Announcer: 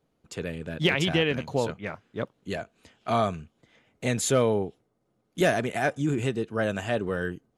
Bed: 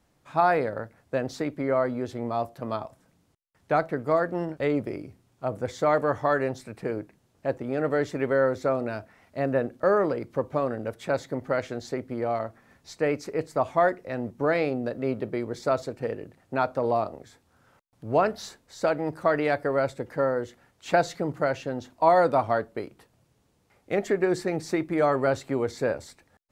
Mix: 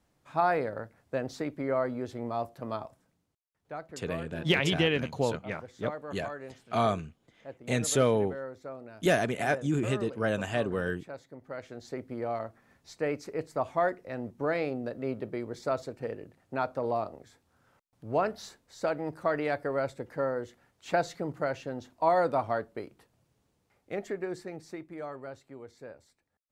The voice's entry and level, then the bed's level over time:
3.65 s, -2.0 dB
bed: 2.88 s -4.5 dB
3.49 s -16.5 dB
11.37 s -16.5 dB
12.02 s -5.5 dB
23.48 s -5.5 dB
25.41 s -19.5 dB

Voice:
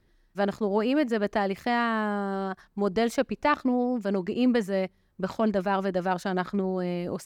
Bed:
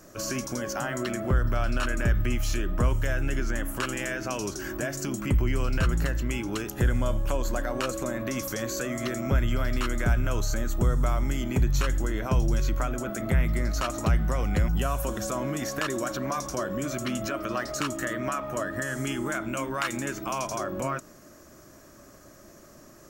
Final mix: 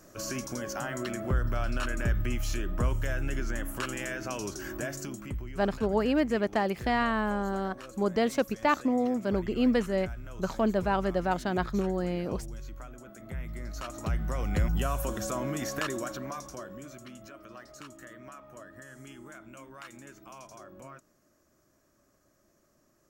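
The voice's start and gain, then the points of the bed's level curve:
5.20 s, -1.5 dB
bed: 4.92 s -4 dB
5.53 s -16.5 dB
13.16 s -16.5 dB
14.62 s -2.5 dB
15.81 s -2.5 dB
17.14 s -17.5 dB

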